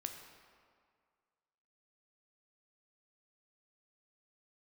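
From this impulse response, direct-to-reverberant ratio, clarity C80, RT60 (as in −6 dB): 4.0 dB, 7.0 dB, 2.0 s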